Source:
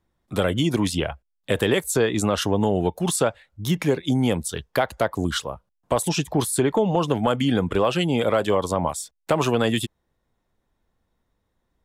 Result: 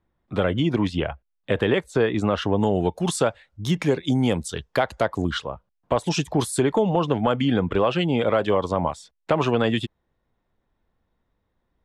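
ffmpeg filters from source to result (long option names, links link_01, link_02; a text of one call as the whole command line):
ffmpeg -i in.wav -af "asetnsamples=nb_out_samples=441:pad=0,asendcmd='2.59 lowpass f 7500;5.22 lowpass f 3700;6.08 lowpass f 8400;6.89 lowpass f 3700',lowpass=2900" out.wav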